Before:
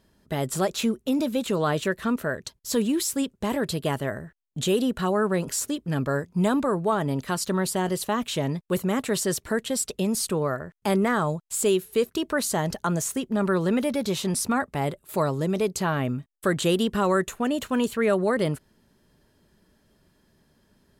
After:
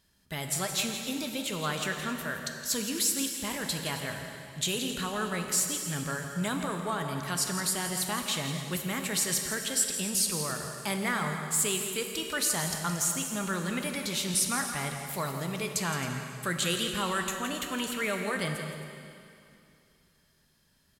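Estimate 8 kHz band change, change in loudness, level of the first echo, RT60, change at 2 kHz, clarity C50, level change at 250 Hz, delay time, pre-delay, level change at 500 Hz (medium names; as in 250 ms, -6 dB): +2.5 dB, -4.5 dB, -10.5 dB, 2.6 s, -1.0 dB, 4.0 dB, -9.5 dB, 167 ms, 5 ms, -11.5 dB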